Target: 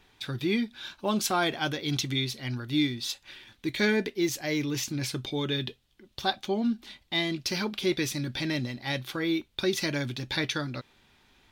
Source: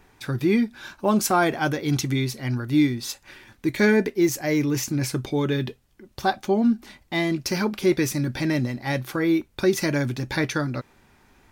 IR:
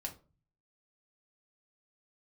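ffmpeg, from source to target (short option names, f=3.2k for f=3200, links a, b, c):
-af "equalizer=f=3.5k:w=1.4:g=13,volume=-7.5dB"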